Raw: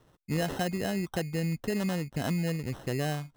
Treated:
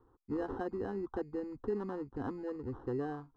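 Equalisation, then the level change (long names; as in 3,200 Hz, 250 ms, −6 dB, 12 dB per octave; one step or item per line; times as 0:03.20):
low-pass filter 1,200 Hz 12 dB per octave
phaser with its sweep stopped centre 620 Hz, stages 6
0.0 dB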